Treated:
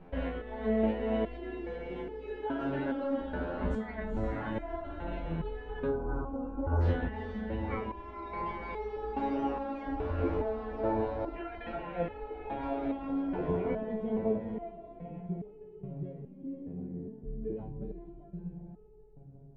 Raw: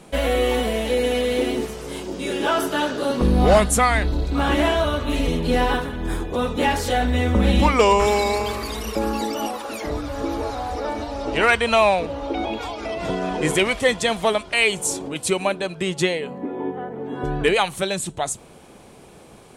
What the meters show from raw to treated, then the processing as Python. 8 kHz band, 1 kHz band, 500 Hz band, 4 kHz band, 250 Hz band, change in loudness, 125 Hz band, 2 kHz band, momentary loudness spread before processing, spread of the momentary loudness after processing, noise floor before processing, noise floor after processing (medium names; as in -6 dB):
under -40 dB, -16.0 dB, -13.5 dB, -29.5 dB, -10.0 dB, -14.0 dB, -11.0 dB, -21.0 dB, 12 LU, 12 LU, -46 dBFS, -52 dBFS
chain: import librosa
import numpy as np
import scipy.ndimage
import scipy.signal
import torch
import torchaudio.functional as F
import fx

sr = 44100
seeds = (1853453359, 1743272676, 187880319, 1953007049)

y = fx.notch(x, sr, hz=1200.0, q=9.9)
y = fx.filter_sweep_lowpass(y, sr, from_hz=1600.0, to_hz=200.0, start_s=12.82, end_s=14.87, q=0.85)
y = fx.over_compress(y, sr, threshold_db=-23.0, ratio=-1.0)
y = fx.air_absorb(y, sr, metres=110.0)
y = fx.echo_diffused(y, sr, ms=463, feedback_pct=43, wet_db=-4.0)
y = fx.spec_box(y, sr, start_s=5.87, length_s=0.94, low_hz=1600.0, high_hz=5700.0, gain_db=-25)
y = fx.low_shelf(y, sr, hz=66.0, db=12.0)
y = fx.resonator_held(y, sr, hz=2.4, low_hz=87.0, high_hz=430.0)